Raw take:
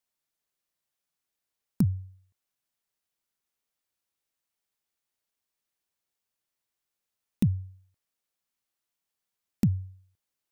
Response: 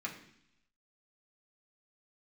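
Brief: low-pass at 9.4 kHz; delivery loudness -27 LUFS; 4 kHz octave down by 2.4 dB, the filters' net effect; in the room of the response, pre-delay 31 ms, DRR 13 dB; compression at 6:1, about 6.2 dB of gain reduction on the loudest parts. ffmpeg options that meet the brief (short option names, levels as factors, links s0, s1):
-filter_complex "[0:a]lowpass=9400,equalizer=f=4000:t=o:g=-3,acompressor=threshold=0.0562:ratio=6,asplit=2[s0][s1];[1:a]atrim=start_sample=2205,adelay=31[s2];[s1][s2]afir=irnorm=-1:irlink=0,volume=0.188[s3];[s0][s3]amix=inputs=2:normalize=0,volume=2.37"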